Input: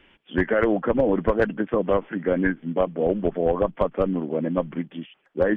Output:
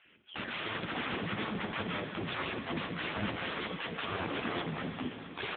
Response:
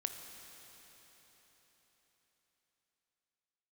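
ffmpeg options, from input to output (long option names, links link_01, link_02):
-filter_complex "[0:a]highpass=frequency=58:poles=1,asplit=3[link_01][link_02][link_03];[link_01]afade=type=out:start_time=0.83:duration=0.02[link_04];[link_02]equalizer=frequency=2700:width=0.31:gain=-13.5,afade=type=in:start_time=0.83:duration=0.02,afade=type=out:start_time=2.28:duration=0.02[link_05];[link_03]afade=type=in:start_time=2.28:duration=0.02[link_06];[link_04][link_05][link_06]amix=inputs=3:normalize=0,bandreject=frequency=223.7:width_type=h:width=4,bandreject=frequency=447.4:width_type=h:width=4,bandreject=frequency=671.1:width_type=h:width=4,bandreject=frequency=894.8:width_type=h:width=4,bandreject=frequency=1118.5:width_type=h:width=4,bandreject=frequency=1342.2:width_type=h:width=4,bandreject=frequency=1565.9:width_type=h:width=4,bandreject=frequency=1789.6:width_type=h:width=4,bandreject=frequency=2013.3:width_type=h:width=4,bandreject=frequency=2237:width_type=h:width=4,asettb=1/sr,asplit=3[link_07][link_08][link_09];[link_07]atrim=end=3.064[link_10];[link_08]atrim=start=3.06:end=3.51,asetpts=PTS-STARTPTS,afade=type=in:duration=0.004:curve=qsin,afade=type=out:start_time=0.446:duration=0.004:curve=qsin,acompressor=mode=upward:threshold=-37dB:ratio=2.5[link_11];[link_09]atrim=start=3.506[link_12];[link_10][link_11]acrossfade=duration=0.004:curve1=hsin:curve2=qsin[link_13];[link_13][link_12]acrossfade=duration=0.004:curve1=qsin:curve2=hsin,aeval=exprs='(mod(16.8*val(0)+1,2)-1)/16.8':channel_layout=same,acrusher=bits=7:mode=log:mix=0:aa=0.000001,acrossover=split=660[link_14][link_15];[link_14]adelay=50[link_16];[link_16][link_15]amix=inputs=2:normalize=0[link_17];[1:a]atrim=start_sample=2205[link_18];[link_17][link_18]afir=irnorm=-1:irlink=0" -ar 8000 -c:a libopencore_amrnb -b:a 6700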